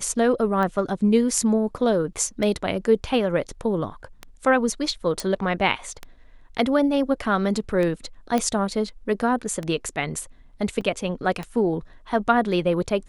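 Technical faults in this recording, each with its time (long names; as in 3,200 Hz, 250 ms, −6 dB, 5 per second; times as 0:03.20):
scratch tick 33 1/3 rpm −16 dBFS
0:05.20: click
0:08.38: click −10 dBFS
0:10.81: drop-out 4.2 ms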